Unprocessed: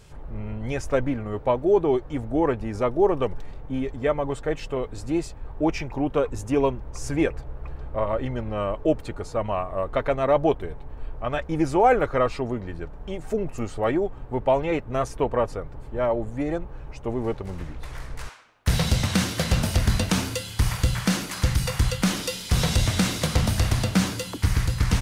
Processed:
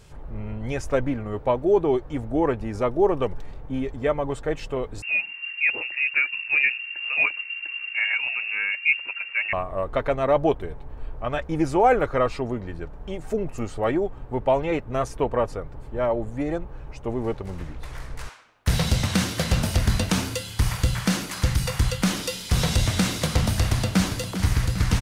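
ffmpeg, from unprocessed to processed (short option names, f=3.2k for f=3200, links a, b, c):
-filter_complex "[0:a]asettb=1/sr,asplit=3[a][b][c];[a]atrim=end=5.024[d];[b]atrim=start=5.02:end=9.53,asetpts=PTS-STARTPTS,afade=t=in:d=0.004:c=qsin,afade=t=out:st=4.506:d=0.004:c=qsin,lowpass=f=2.4k:t=q:w=0.5098,lowpass=f=2.4k:t=q:w=0.6013,lowpass=f=2.4k:t=q:w=0.9,lowpass=f=2.4k:t=q:w=2.563,afreqshift=-2800[e];[c]atrim=start=9.526[f];[d][e]acrossfade=d=0.004:c1=hsin:c2=qsin[g];[g][f]acrossfade=d=0.004:c1=qsin:c2=hsin,asplit=2[h][i];[i]afade=t=in:st=23.58:d=0.01,afade=t=out:st=24.14:d=0.01,aecho=0:1:400|800|1200|1600|2000|2400|2800|3200|3600:0.316228|0.205548|0.133606|0.0868441|0.0564486|0.0366916|0.0238495|0.0155022|0.0100764[j];[h][j]amix=inputs=2:normalize=0"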